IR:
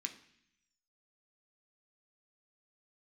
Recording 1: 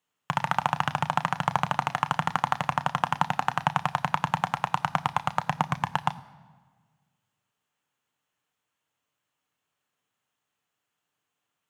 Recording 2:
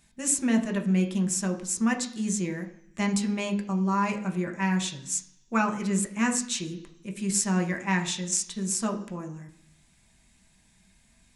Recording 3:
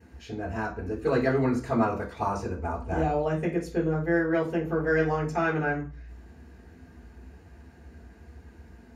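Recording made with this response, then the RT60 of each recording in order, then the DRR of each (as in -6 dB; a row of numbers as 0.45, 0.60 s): 2; 1.5, 0.65, 0.40 s; 10.0, 3.5, -13.5 dB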